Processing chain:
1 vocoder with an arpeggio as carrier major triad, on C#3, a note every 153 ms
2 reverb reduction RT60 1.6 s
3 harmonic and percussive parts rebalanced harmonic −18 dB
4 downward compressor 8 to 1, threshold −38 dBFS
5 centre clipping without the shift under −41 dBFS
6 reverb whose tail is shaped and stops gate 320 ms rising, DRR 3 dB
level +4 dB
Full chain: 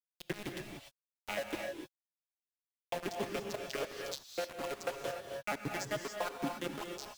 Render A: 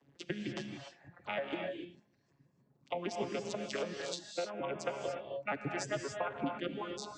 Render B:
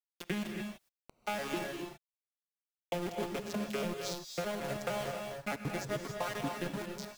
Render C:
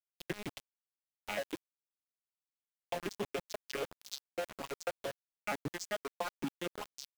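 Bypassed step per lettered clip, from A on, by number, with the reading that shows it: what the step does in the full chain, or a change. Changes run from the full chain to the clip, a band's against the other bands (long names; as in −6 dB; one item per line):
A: 5, distortion level −6 dB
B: 3, 125 Hz band +5.5 dB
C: 6, change in momentary loudness spread −1 LU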